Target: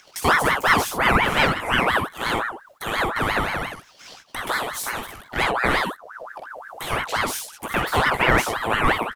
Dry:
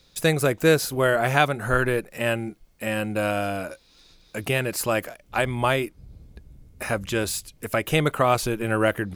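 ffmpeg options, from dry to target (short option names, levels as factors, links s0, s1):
-filter_complex "[0:a]flanger=delay=16:depth=3.1:speed=1.8,asettb=1/sr,asplit=3[s0][s1][s2];[s0]atrim=end=4.524[s3];[s1]atrim=start=4.52:end=5.22,asetpts=PTS-STARTPTS,afade=t=in:d=0.004:c=qsin,afade=t=out:st=0.696:d=0.004:c=qsin,acrossover=split=250|3000[s4][s5][s6];[s5]acompressor=threshold=0.0178:ratio=6[s7];[s4][s7][s6]amix=inputs=3:normalize=0[s8];[s2]atrim=start=5.216[s9];[s3][s8]acrossfade=d=0.004:c1=hsin:c2=qsin[s10];[s10][s9]acrossfade=d=0.004:c1=qsin:c2=hsin,acrossover=split=670|1300[s11][s12][s13];[s13]asoftclip=type=tanh:threshold=0.0473[s14];[s11][s12][s14]amix=inputs=3:normalize=0,agate=range=0.0355:threshold=0.00141:ratio=16:detection=peak,asplit=2[s15][s16];[s16]aecho=0:1:49|62:0.473|0.501[s17];[s15][s17]amix=inputs=2:normalize=0,acompressor=mode=upward:threshold=0.0251:ratio=2.5,aeval=exprs='val(0)*sin(2*PI*1100*n/s+1100*0.5/5.7*sin(2*PI*5.7*n/s))':c=same,volume=2"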